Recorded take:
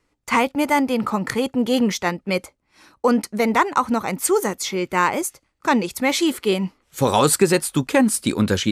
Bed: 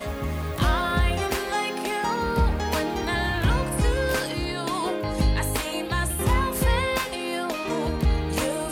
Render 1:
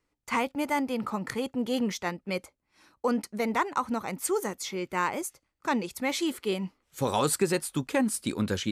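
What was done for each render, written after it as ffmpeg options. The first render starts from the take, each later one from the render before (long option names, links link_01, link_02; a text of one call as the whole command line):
ffmpeg -i in.wav -af "volume=-9.5dB" out.wav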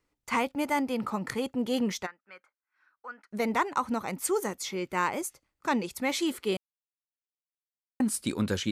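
ffmpeg -i in.wav -filter_complex "[0:a]asplit=3[link_01][link_02][link_03];[link_01]afade=type=out:start_time=2.05:duration=0.02[link_04];[link_02]bandpass=frequency=1500:width_type=q:width=5.2,afade=type=in:start_time=2.05:duration=0.02,afade=type=out:start_time=3.31:duration=0.02[link_05];[link_03]afade=type=in:start_time=3.31:duration=0.02[link_06];[link_04][link_05][link_06]amix=inputs=3:normalize=0,asplit=3[link_07][link_08][link_09];[link_07]atrim=end=6.57,asetpts=PTS-STARTPTS,afade=type=out:start_time=6.566:duration=0.004:curve=hsin[link_10];[link_08]atrim=start=6.57:end=8,asetpts=PTS-STARTPTS,volume=0[link_11];[link_09]atrim=start=8,asetpts=PTS-STARTPTS,afade=type=in:duration=0.004:curve=hsin[link_12];[link_10][link_11][link_12]concat=n=3:v=0:a=1" out.wav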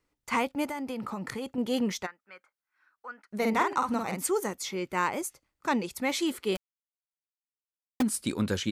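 ffmpeg -i in.wav -filter_complex "[0:a]asettb=1/sr,asplit=3[link_01][link_02][link_03];[link_01]atrim=end=0.674[link_04];[link_02]atrim=start=0.67:end=1.58,asetpts=PTS-STARTPTS,afade=type=in:duration=0.004:curve=qsin,afade=type=out:start_time=0.906:duration=0.004:curve=qsin,acompressor=threshold=-30dB:ratio=10:attack=3.2:release=140:knee=1:detection=peak[link_05];[link_03]atrim=start=1.576[link_06];[link_04][link_05]acrossfade=duration=0.004:curve1=hsin:curve2=qsin[link_07];[link_07][link_06]acrossfade=duration=0.004:curve1=qsin:curve2=hsin,asplit=3[link_08][link_09][link_10];[link_08]afade=type=out:start_time=3.41:duration=0.02[link_11];[link_09]asplit=2[link_12][link_13];[link_13]adelay=50,volume=-4dB[link_14];[link_12][link_14]amix=inputs=2:normalize=0,afade=type=in:start_time=3.41:duration=0.02,afade=type=out:start_time=4.25:duration=0.02[link_15];[link_10]afade=type=in:start_time=4.25:duration=0.02[link_16];[link_11][link_15][link_16]amix=inputs=3:normalize=0,asplit=3[link_17][link_18][link_19];[link_17]afade=type=out:start_time=6.55:duration=0.02[link_20];[link_18]acrusher=bits=5:dc=4:mix=0:aa=0.000001,afade=type=in:start_time=6.55:duration=0.02,afade=type=out:start_time=8.01:duration=0.02[link_21];[link_19]afade=type=in:start_time=8.01:duration=0.02[link_22];[link_20][link_21][link_22]amix=inputs=3:normalize=0" out.wav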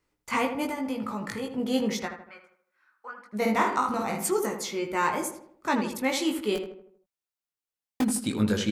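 ffmpeg -i in.wav -filter_complex "[0:a]asplit=2[link_01][link_02];[link_02]adelay=19,volume=-3.5dB[link_03];[link_01][link_03]amix=inputs=2:normalize=0,asplit=2[link_04][link_05];[link_05]adelay=79,lowpass=frequency=1900:poles=1,volume=-7dB,asplit=2[link_06][link_07];[link_07]adelay=79,lowpass=frequency=1900:poles=1,volume=0.47,asplit=2[link_08][link_09];[link_09]adelay=79,lowpass=frequency=1900:poles=1,volume=0.47,asplit=2[link_10][link_11];[link_11]adelay=79,lowpass=frequency=1900:poles=1,volume=0.47,asplit=2[link_12][link_13];[link_13]adelay=79,lowpass=frequency=1900:poles=1,volume=0.47,asplit=2[link_14][link_15];[link_15]adelay=79,lowpass=frequency=1900:poles=1,volume=0.47[link_16];[link_04][link_06][link_08][link_10][link_12][link_14][link_16]amix=inputs=7:normalize=0" out.wav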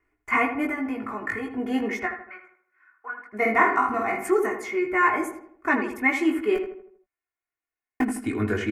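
ffmpeg -i in.wav -af "highshelf=frequency=2800:width_type=q:width=3:gain=-11,aecho=1:1:2.8:0.95" out.wav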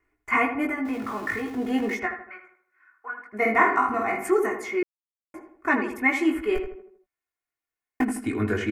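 ffmpeg -i in.wav -filter_complex "[0:a]asettb=1/sr,asplit=3[link_01][link_02][link_03];[link_01]atrim=end=0.854[link_04];[link_02]atrim=start=0.85:end=1.95,asetpts=PTS-STARTPTS,afade=type=in:duration=0.004:curve=qsin,afade=type=out:start_time=1.096:duration=0.004:curve=qsin,aeval=exprs='val(0)+0.5*0.0106*sgn(val(0))':channel_layout=same[link_05];[link_03]atrim=start=1.946[link_06];[link_04][link_05]acrossfade=duration=0.004:curve1=hsin:curve2=qsin[link_07];[link_07][link_06]acrossfade=duration=0.004:curve1=qsin:curve2=hsin,asplit=3[link_08][link_09][link_10];[link_08]afade=type=out:start_time=6.33:duration=0.02[link_11];[link_09]asubboost=boost=8:cutoff=72,afade=type=in:start_time=6.33:duration=0.02,afade=type=out:start_time=6.76:duration=0.02[link_12];[link_10]afade=type=in:start_time=6.76:duration=0.02[link_13];[link_11][link_12][link_13]amix=inputs=3:normalize=0,asplit=3[link_14][link_15][link_16];[link_14]atrim=end=4.83,asetpts=PTS-STARTPTS,afade=type=out:start_time=4.826:duration=0.004:curve=hsin[link_17];[link_15]atrim=start=4.83:end=5.34,asetpts=PTS-STARTPTS,volume=0[link_18];[link_16]atrim=start=5.34,asetpts=PTS-STARTPTS,afade=type=in:duration=0.004:curve=hsin[link_19];[link_17][link_18][link_19]concat=n=3:v=0:a=1" out.wav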